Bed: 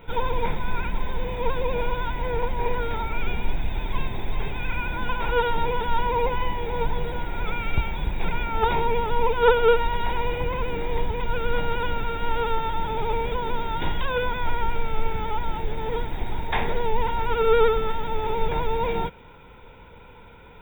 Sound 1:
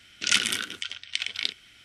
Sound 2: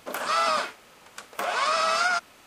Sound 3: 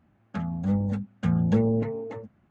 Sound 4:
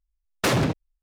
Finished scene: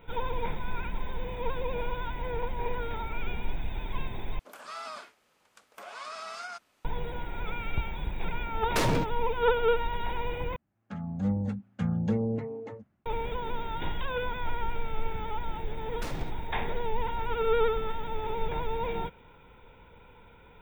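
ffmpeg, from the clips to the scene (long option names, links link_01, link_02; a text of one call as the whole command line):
ffmpeg -i bed.wav -i cue0.wav -i cue1.wav -i cue2.wav -i cue3.wav -filter_complex "[4:a]asplit=2[link_01][link_02];[0:a]volume=-7dB[link_03];[3:a]dynaudnorm=framelen=160:gausssize=5:maxgain=12.5dB[link_04];[link_03]asplit=3[link_05][link_06][link_07];[link_05]atrim=end=4.394[link_08];[2:a]atrim=end=2.46,asetpts=PTS-STARTPTS,volume=-16.5dB[link_09];[link_06]atrim=start=6.846:end=10.564[link_10];[link_04]atrim=end=2.5,asetpts=PTS-STARTPTS,volume=-15dB[link_11];[link_07]atrim=start=13.056[link_12];[link_01]atrim=end=1.02,asetpts=PTS-STARTPTS,volume=-6dB,afade=type=in:duration=0.004:curve=hsin,afade=type=out:start_time=1.016:duration=0.004:curve=hsin,adelay=8320[link_13];[link_02]atrim=end=1.02,asetpts=PTS-STARTPTS,volume=-18dB,afade=type=in:duration=0.004:curve=hsin,afade=type=out:start_time=1.016:duration=0.004:curve=hsin,adelay=15580[link_14];[link_08][link_09]acrossfade=duration=0.004:curve1=hsin:curve2=hsin[link_15];[link_15][link_10]acrossfade=duration=0.004:curve1=hsin:curve2=hsin[link_16];[link_16][link_11]acrossfade=duration=0.004:curve1=hsin:curve2=hsin[link_17];[link_17][link_12]acrossfade=duration=0.004:curve1=hsin:curve2=hsin[link_18];[link_18][link_13][link_14]amix=inputs=3:normalize=0" out.wav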